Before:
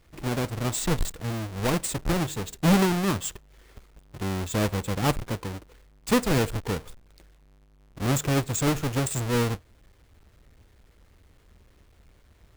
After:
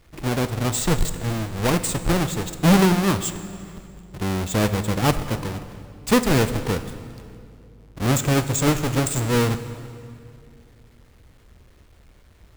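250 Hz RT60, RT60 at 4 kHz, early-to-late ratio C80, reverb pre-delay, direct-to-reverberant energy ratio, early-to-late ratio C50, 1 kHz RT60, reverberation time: 3.1 s, 2.0 s, 13.0 dB, 20 ms, 11.0 dB, 12.0 dB, 2.3 s, 2.5 s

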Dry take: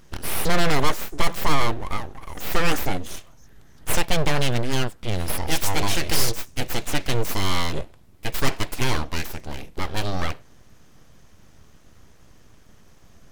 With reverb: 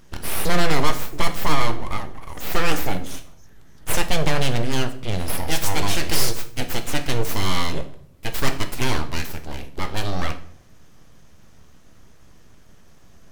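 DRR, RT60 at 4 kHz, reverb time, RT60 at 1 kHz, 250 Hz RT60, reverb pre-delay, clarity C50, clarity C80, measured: 8.0 dB, 0.50 s, 0.65 s, 0.55 s, 0.75 s, 8 ms, 13.0 dB, 17.0 dB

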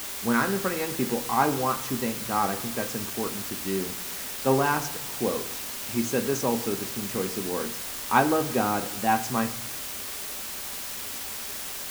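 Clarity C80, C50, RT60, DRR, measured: 17.0 dB, 15.0 dB, 1.1 s, 10.0 dB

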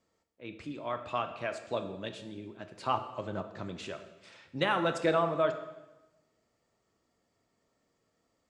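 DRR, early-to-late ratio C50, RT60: 7.5 dB, 10.0 dB, 1.0 s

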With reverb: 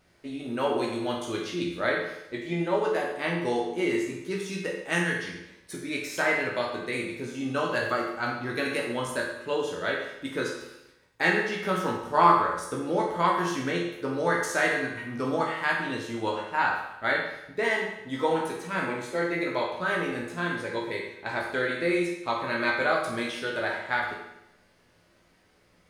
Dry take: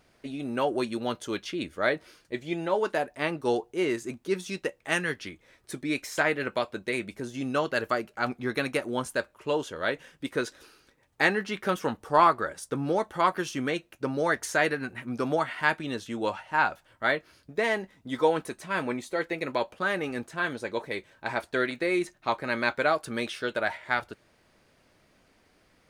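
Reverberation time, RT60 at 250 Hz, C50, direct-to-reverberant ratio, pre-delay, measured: 0.85 s, 0.90 s, 3.0 dB, -2.5 dB, 12 ms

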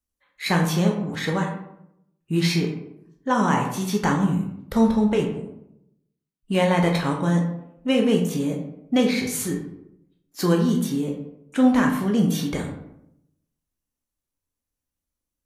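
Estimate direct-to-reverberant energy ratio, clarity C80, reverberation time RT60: 1.5 dB, 9.0 dB, 0.80 s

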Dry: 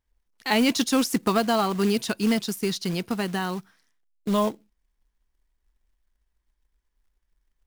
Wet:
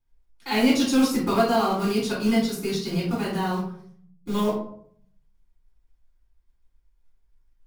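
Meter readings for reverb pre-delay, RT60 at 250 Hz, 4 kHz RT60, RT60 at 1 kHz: 3 ms, 1.0 s, 0.35 s, 0.55 s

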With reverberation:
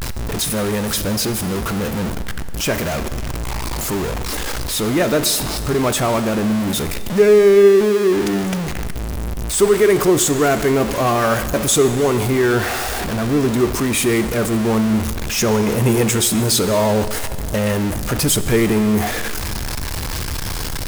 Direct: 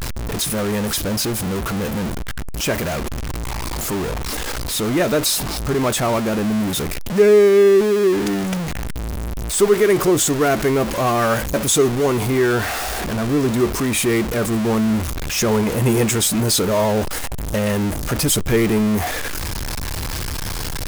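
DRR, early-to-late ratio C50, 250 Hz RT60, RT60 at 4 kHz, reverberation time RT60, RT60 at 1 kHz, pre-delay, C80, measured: 11.5 dB, 12.0 dB, 2.1 s, 2.1 s, 2.2 s, 2.3 s, 24 ms, 13.0 dB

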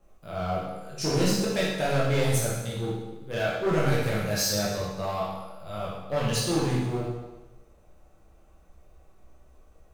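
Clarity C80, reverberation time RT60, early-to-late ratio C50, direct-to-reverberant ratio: 3.0 dB, 1.1 s, -0.5 dB, -6.5 dB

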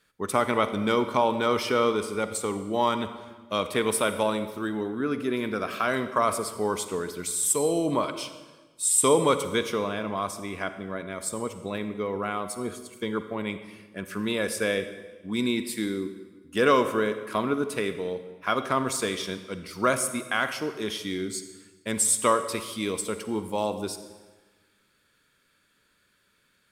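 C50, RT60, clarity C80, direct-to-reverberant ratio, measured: 10.5 dB, 1.3 s, 12.0 dB, 10.0 dB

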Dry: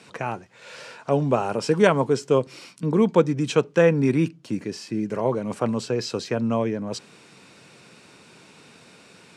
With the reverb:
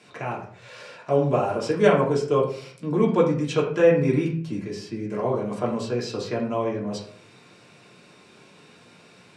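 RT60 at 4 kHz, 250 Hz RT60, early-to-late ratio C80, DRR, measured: 0.35 s, 0.55 s, 10.0 dB, -4.0 dB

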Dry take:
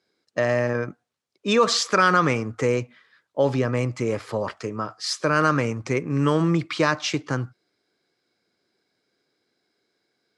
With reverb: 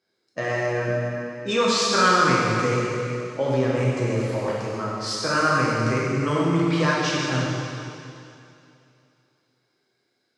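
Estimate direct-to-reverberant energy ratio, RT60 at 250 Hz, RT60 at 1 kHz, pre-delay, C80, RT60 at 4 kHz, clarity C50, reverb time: -6.0 dB, 2.7 s, 2.6 s, 6 ms, 0.0 dB, 2.7 s, -2.0 dB, 2.7 s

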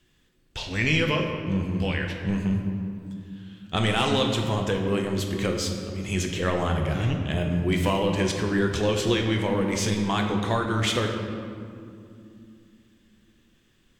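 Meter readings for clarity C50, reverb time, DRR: 4.0 dB, 2.6 s, 2.0 dB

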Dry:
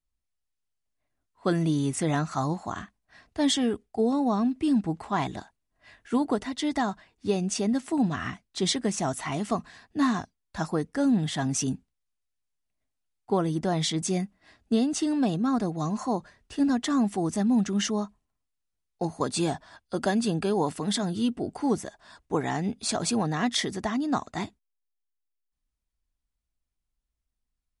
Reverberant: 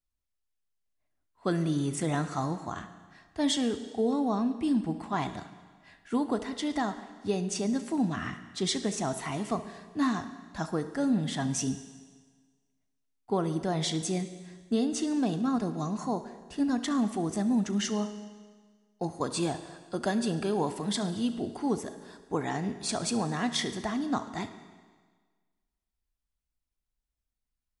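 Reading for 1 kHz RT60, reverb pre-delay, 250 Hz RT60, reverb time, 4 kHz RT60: 1.5 s, 34 ms, 1.5 s, 1.5 s, 1.5 s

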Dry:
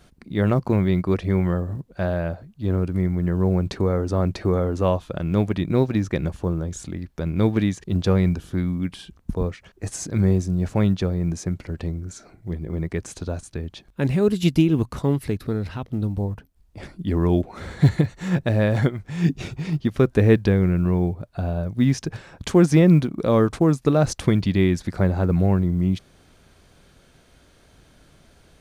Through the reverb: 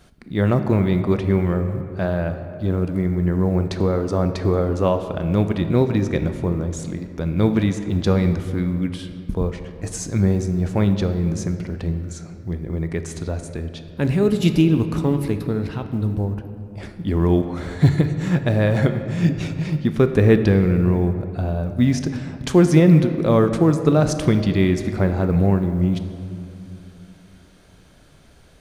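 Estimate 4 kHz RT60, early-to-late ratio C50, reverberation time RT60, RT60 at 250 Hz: 1.4 s, 9.0 dB, 2.6 s, 3.4 s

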